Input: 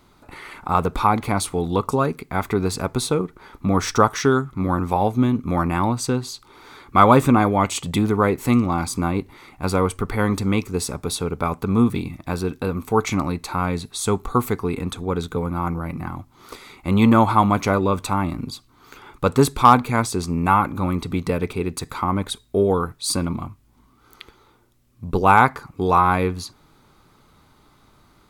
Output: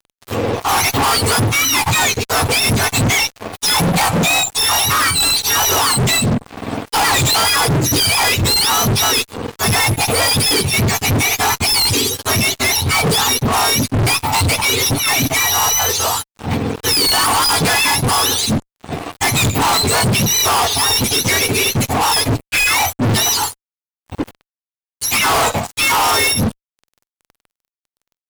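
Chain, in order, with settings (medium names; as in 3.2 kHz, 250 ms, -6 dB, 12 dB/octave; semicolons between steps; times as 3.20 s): spectrum inverted on a logarithmic axis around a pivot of 1 kHz; fuzz box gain 37 dB, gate -46 dBFS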